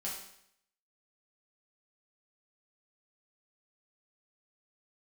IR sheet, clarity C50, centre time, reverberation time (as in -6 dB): 3.5 dB, 44 ms, 0.70 s